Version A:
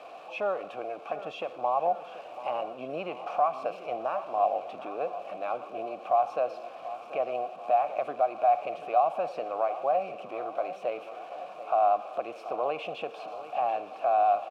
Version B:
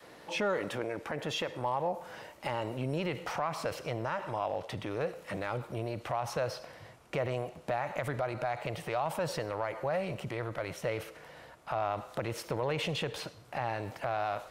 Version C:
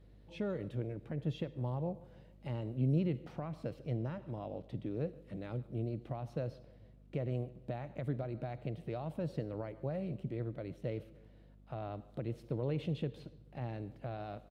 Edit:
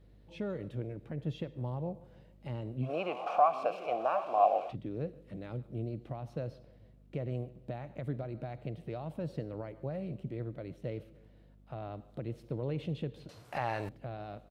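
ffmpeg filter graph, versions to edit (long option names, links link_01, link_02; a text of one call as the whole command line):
ffmpeg -i take0.wav -i take1.wav -i take2.wav -filter_complex "[2:a]asplit=3[link_01][link_02][link_03];[link_01]atrim=end=2.91[link_04];[0:a]atrim=start=2.81:end=4.76[link_05];[link_02]atrim=start=4.66:end=13.292[link_06];[1:a]atrim=start=13.288:end=13.892[link_07];[link_03]atrim=start=13.888[link_08];[link_04][link_05]acrossfade=duration=0.1:curve1=tri:curve2=tri[link_09];[link_09][link_06]acrossfade=duration=0.1:curve1=tri:curve2=tri[link_10];[link_10][link_07]acrossfade=duration=0.004:curve1=hsin:curve2=hsin[link_11];[link_11][link_08]acrossfade=duration=0.004:curve1=hsin:curve2=hsin" out.wav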